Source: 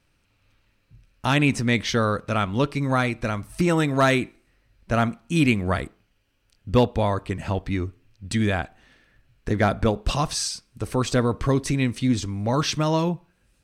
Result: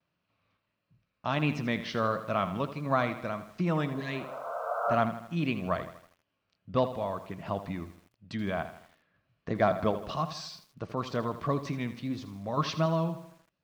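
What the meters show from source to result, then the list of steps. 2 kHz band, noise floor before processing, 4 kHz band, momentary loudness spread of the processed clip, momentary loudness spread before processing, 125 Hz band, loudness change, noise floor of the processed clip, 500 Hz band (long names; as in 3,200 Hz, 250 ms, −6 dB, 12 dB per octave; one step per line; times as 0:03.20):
−10.0 dB, −67 dBFS, −11.5 dB, 11 LU, 9 LU, −10.0 dB, −8.0 dB, −81 dBFS, −6.0 dB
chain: pitch vibrato 1.5 Hz 76 cents
sample-and-hold tremolo
loudspeaker in its box 110–5,100 Hz, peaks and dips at 170 Hz +8 dB, 640 Hz +9 dB, 1,100 Hz +9 dB
healed spectral selection 0:03.94–0:04.92, 450–1,600 Hz both
feedback echo at a low word length 80 ms, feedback 55%, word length 7 bits, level −12 dB
level −9 dB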